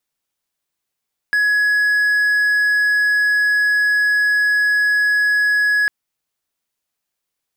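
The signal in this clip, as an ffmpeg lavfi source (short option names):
-f lavfi -i "aevalsrc='0.282*(1-4*abs(mod(1680*t+0.25,1)-0.5))':d=4.55:s=44100"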